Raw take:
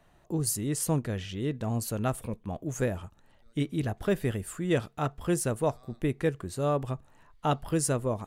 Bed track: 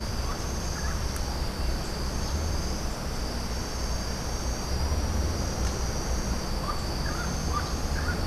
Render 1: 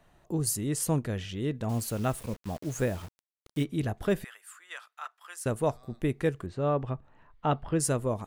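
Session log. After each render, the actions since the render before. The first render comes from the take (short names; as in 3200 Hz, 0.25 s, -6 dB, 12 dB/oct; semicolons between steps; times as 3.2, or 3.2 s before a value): 1.69–3.64 requantised 8-bit, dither none; 4.24–5.46 ladder high-pass 1000 Hz, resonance 35%; 6.46–7.8 LPF 2800 Hz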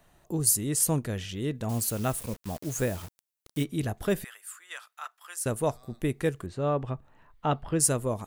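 high shelf 5900 Hz +10 dB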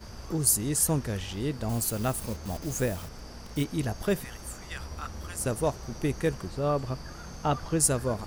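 add bed track -12.5 dB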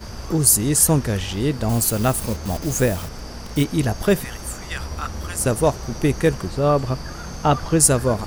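gain +9.5 dB; limiter -2 dBFS, peak gain reduction 2 dB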